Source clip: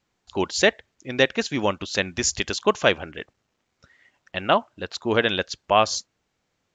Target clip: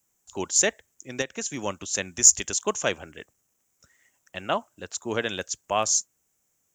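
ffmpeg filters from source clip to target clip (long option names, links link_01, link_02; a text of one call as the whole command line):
ffmpeg -i in.wav -filter_complex "[0:a]asettb=1/sr,asplit=3[link_01][link_02][link_03];[link_01]atrim=end=1.214[link_04];[link_02]atrim=start=1.21:end=1.66,asetpts=PTS-STARTPTS,afade=type=in:duration=0.004:curve=qsin,afade=type=out:start_time=0.446:duration=0.004:curve=qsin,acompressor=threshold=-21dB:ratio=5[link_05];[link_03]atrim=start=1.656[link_06];[link_04][link_05]acrossfade=duration=0.004:curve1=hsin:curve2=qsin[link_07];[link_07][link_06]acrossfade=duration=0.004:curve1=qsin:curve2=hsin,acrossover=split=130[link_08][link_09];[link_09]aexciter=amount=15.2:drive=5:freq=6500[link_10];[link_08][link_10]amix=inputs=2:normalize=0,volume=-7dB" out.wav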